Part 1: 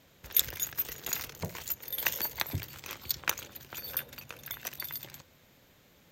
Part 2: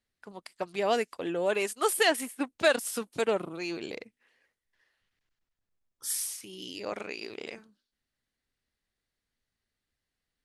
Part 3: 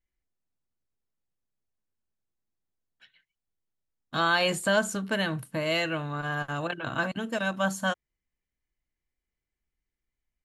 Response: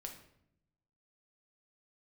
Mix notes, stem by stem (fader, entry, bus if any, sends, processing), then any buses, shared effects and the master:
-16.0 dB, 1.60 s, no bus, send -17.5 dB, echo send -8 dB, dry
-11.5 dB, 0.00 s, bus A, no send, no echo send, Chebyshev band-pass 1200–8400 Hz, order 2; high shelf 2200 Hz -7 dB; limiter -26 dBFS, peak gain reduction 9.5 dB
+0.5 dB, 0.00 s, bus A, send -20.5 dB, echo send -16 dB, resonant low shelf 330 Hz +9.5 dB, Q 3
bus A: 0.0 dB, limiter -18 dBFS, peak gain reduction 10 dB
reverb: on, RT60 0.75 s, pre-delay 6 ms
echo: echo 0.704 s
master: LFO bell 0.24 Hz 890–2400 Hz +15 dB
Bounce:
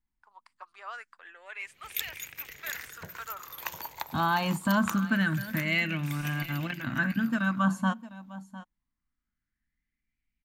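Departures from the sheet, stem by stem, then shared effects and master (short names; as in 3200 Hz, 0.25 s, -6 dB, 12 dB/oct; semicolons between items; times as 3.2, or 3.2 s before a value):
stem 1 -16.0 dB -> -9.5 dB; stem 3 +0.5 dB -> -9.0 dB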